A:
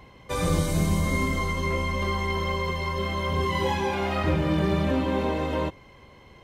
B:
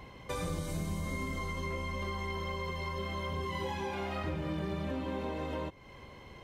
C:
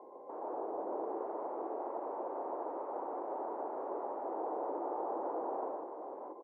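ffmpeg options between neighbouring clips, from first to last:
ffmpeg -i in.wav -af "acompressor=threshold=-37dB:ratio=3" out.wav
ffmpeg -i in.wav -filter_complex "[0:a]aeval=exprs='(mod(47.3*val(0)+1,2)-1)/47.3':channel_layout=same,asuperpass=centerf=550:order=8:qfactor=0.86,asplit=2[link_01][link_02];[link_02]aecho=0:1:120|147|628:0.631|0.668|0.596[link_03];[link_01][link_03]amix=inputs=2:normalize=0,volume=3dB" out.wav

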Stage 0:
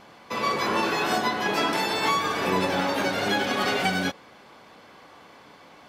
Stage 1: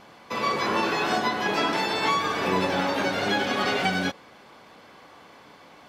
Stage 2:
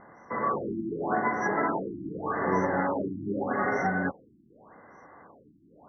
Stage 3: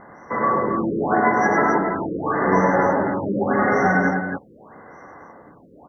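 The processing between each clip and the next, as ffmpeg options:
ffmpeg -i in.wav -filter_complex "[0:a]acrossover=split=6800[link_01][link_02];[link_02]acompressor=threshold=-52dB:ratio=4:attack=1:release=60[link_03];[link_01][link_03]amix=inputs=2:normalize=0" out.wav
ffmpeg -i in.wav -af "afftfilt=real='re*(1-between(b*sr/4096,2100,5500))':imag='im*(1-between(b*sr/4096,2100,5500))':win_size=4096:overlap=0.75,afftfilt=real='re*lt(b*sr/1024,350*pow(6300/350,0.5+0.5*sin(2*PI*0.84*pts/sr)))':imag='im*lt(b*sr/1024,350*pow(6300/350,0.5+0.5*sin(2*PI*0.84*pts/sr)))':win_size=1024:overlap=0.75,volume=-1.5dB" out.wav
ffmpeg -i in.wav -af "aecho=1:1:102|271.1:0.562|0.501,volume=7.5dB" out.wav

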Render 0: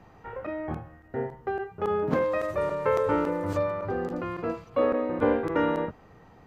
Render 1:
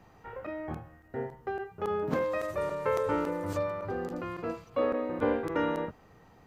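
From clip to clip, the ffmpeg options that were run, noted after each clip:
ffmpeg -i in.wav -af "highshelf=frequency=4400:gain=8.5,volume=-4.5dB" out.wav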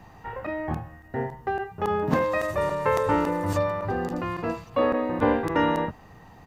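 ffmpeg -i in.wav -af "aecho=1:1:1.1:0.35,volume=7.5dB" out.wav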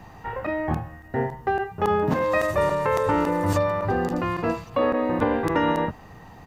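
ffmpeg -i in.wav -af "alimiter=limit=-16dB:level=0:latency=1:release=193,volume=4dB" out.wav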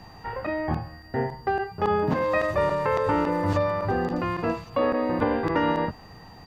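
ffmpeg -i in.wav -filter_complex "[0:a]acrossover=split=5000[link_01][link_02];[link_02]acompressor=threshold=-57dB:ratio=4:attack=1:release=60[link_03];[link_01][link_03]amix=inputs=2:normalize=0,aeval=exprs='val(0)+0.00224*sin(2*PI*4700*n/s)':channel_layout=same,volume=-1.5dB" out.wav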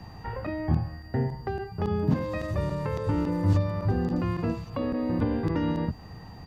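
ffmpeg -i in.wav -filter_complex "[0:a]equalizer=frequency=84:width=0.35:gain=8.5,acrossover=split=330|3400[link_01][link_02][link_03];[link_02]acompressor=threshold=-32dB:ratio=6[link_04];[link_01][link_04][link_03]amix=inputs=3:normalize=0,volume=-2.5dB" out.wav

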